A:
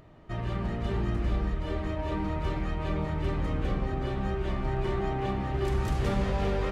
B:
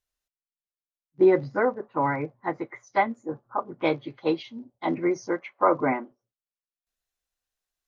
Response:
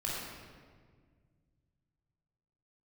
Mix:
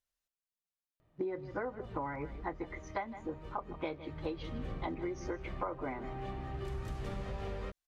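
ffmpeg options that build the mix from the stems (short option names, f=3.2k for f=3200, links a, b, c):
-filter_complex "[0:a]adelay=1000,volume=-12dB,afade=t=in:st=4:d=0.54:silence=0.421697,asplit=2[a][b];[b]volume=-12.5dB[c];[1:a]volume=-4.5dB,asplit=2[d][e];[e]volume=-18.5dB[f];[2:a]atrim=start_sample=2205[g];[c][g]afir=irnorm=-1:irlink=0[h];[f]aecho=0:1:156:1[i];[a][d][h][i]amix=inputs=4:normalize=0,acompressor=threshold=-34dB:ratio=12"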